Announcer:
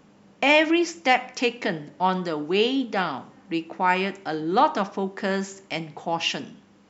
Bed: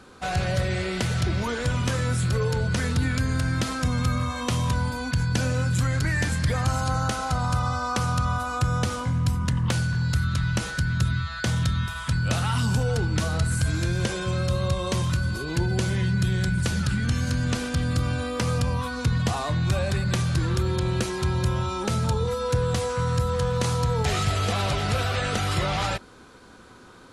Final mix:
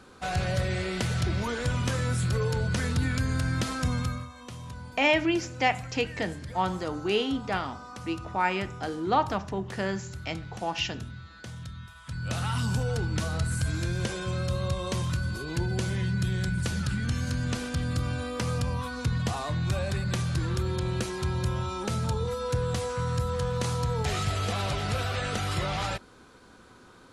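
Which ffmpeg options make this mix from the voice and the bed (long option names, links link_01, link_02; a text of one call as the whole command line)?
ffmpeg -i stem1.wav -i stem2.wav -filter_complex "[0:a]adelay=4550,volume=-5dB[link_01];[1:a]volume=9dB,afade=type=out:start_time=3.92:duration=0.37:silence=0.211349,afade=type=in:start_time=12.03:duration=0.42:silence=0.251189[link_02];[link_01][link_02]amix=inputs=2:normalize=0" out.wav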